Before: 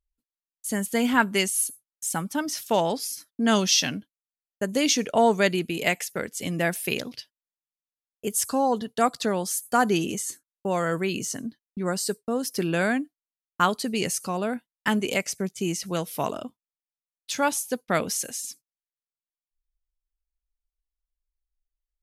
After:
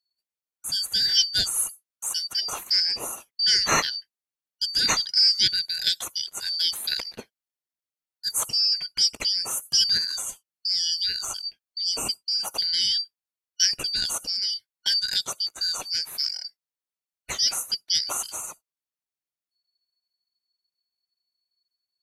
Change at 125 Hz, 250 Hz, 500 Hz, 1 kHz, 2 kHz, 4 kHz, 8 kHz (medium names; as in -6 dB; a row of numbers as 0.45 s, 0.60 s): under -10 dB, -20.5 dB, -17.5 dB, -10.0 dB, -5.5 dB, +11.0 dB, +1.0 dB